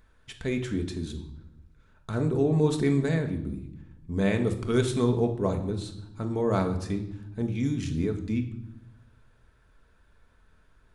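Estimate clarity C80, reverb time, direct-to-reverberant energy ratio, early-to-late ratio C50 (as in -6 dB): 13.0 dB, 0.80 s, 4.5 dB, 10.5 dB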